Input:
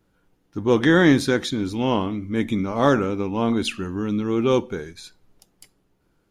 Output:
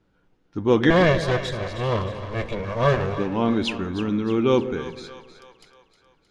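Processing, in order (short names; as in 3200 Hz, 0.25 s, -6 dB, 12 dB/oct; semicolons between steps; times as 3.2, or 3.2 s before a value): 0.9–3.18 minimum comb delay 1.8 ms; LPF 5000 Hz 12 dB/oct; split-band echo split 610 Hz, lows 0.144 s, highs 0.312 s, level -11.5 dB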